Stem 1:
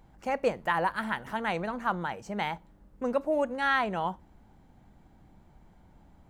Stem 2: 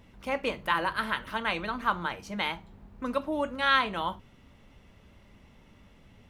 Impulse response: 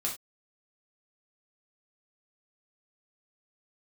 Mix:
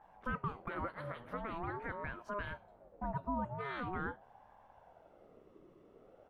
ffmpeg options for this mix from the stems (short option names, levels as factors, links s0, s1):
-filter_complex "[0:a]alimiter=limit=0.0668:level=0:latency=1:release=209,lowpass=1100,aeval=exprs='val(0)*sin(2*PI*590*n/s+590*0.4/0.44*sin(2*PI*0.44*n/s))':c=same,volume=0.794,asplit=2[s0][s1];[1:a]flanger=delay=5.7:depth=4.4:regen=54:speed=1:shape=sinusoidal,volume=-1,adelay=16,volume=0.188[s2];[s1]apad=whole_len=278470[s3];[s2][s3]sidechaincompress=threshold=0.00562:ratio=8:attack=8.3:release=188[s4];[s0][s4]amix=inputs=2:normalize=0"